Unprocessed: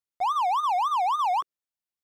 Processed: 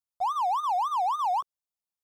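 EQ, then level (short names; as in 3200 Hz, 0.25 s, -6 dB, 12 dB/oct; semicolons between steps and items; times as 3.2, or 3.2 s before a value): fixed phaser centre 810 Hz, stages 4; -1.5 dB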